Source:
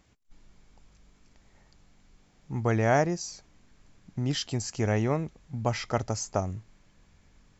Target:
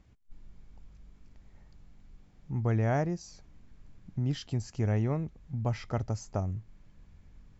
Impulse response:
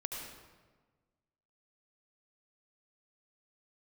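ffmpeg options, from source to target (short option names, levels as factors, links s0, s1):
-filter_complex "[0:a]lowpass=f=4000:p=1,lowshelf=f=210:g=11.5,asplit=2[s0][s1];[s1]acompressor=threshold=0.0141:ratio=6,volume=0.708[s2];[s0][s2]amix=inputs=2:normalize=0,volume=0.355"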